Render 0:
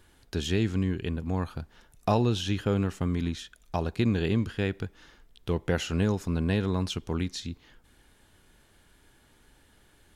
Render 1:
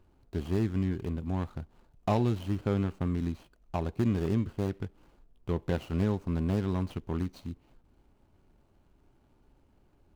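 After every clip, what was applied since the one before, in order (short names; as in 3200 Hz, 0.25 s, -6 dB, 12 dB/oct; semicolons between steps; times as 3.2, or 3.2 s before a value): median filter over 25 samples; notch 470 Hz, Q 12; gain -2 dB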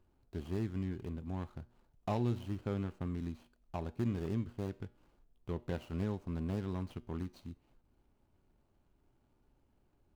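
resonator 120 Hz, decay 0.5 s, harmonics all, mix 40%; gain -4 dB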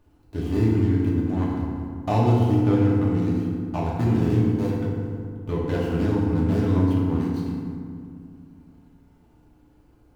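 FDN reverb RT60 2.3 s, low-frequency decay 1.35×, high-frequency decay 0.45×, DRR -5.5 dB; gain +8 dB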